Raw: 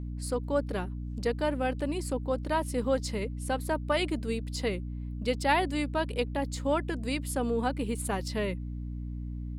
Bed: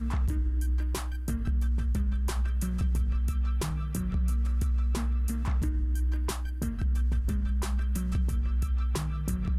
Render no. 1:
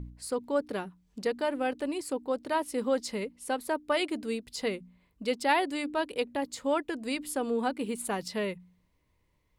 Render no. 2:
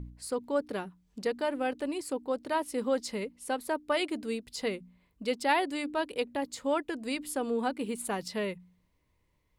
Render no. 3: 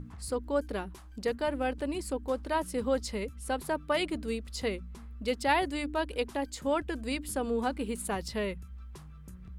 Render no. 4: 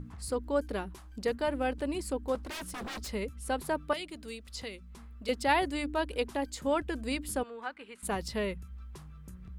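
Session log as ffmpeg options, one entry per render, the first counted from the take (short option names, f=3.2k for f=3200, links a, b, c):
-af "bandreject=f=60:t=h:w=4,bandreject=f=120:t=h:w=4,bandreject=f=180:t=h:w=4,bandreject=f=240:t=h:w=4,bandreject=f=300:t=h:w=4"
-af "volume=-1dB"
-filter_complex "[1:a]volume=-17.5dB[a];[0:a][a]amix=inputs=2:normalize=0"
-filter_complex "[0:a]asettb=1/sr,asplit=3[a][b][c];[a]atrim=end=2.354[d];[b]atrim=start=2.35:end=3.12,asetpts=PTS-STARTPTS,afade=t=in:d=0.004:c=qsin,afade=t=out:st=0.766:d=0.004:c=qsin,aeval=exprs='0.0188*(abs(mod(val(0)/0.0188+3,4)-2)-1)':c=same[e];[c]atrim=start=3.116[f];[d][e]acrossfade=d=0.004:c1=hsin:c2=qsin[g];[g][f]acrossfade=d=0.004:c1=qsin:c2=hsin,asettb=1/sr,asplit=3[h][i][j];[h]atrim=end=3.934[k];[i]atrim=start=3.93:end=5.29,asetpts=PTS-STARTPTS,afade=t=in:d=0.004:c=qsin,afade=t=out:st=1.356:d=0.004:c=qsin,acrossover=split=530|2400|7900[l][m][n][o];[l]acompressor=threshold=-47dB:ratio=3[p];[m]acompressor=threshold=-51dB:ratio=3[q];[n]acompressor=threshold=-40dB:ratio=3[r];[o]acompressor=threshold=-58dB:ratio=3[s];[p][q][r][s]amix=inputs=4:normalize=0[t];[j]atrim=start=5.286[u];[k][t]acrossfade=d=0.004:c1=hsin:c2=qsin[v];[v][u]acrossfade=d=0.004:c1=qsin:c2=hsin,asettb=1/sr,asplit=3[w][x][y];[w]atrim=end=7.434[z];[x]atrim=start=7.43:end=8.03,asetpts=PTS-STARTPTS,afade=t=in:d=0.004:c=qsin,afade=t=out:st=0.596:d=0.004:c=qsin,bandpass=f=1.7k:t=q:w=1.3[aa];[y]atrim=start=8.026[ab];[z][aa]acrossfade=d=0.004:c1=hsin:c2=qsin[ac];[ac][ab]acrossfade=d=0.004:c1=qsin:c2=hsin"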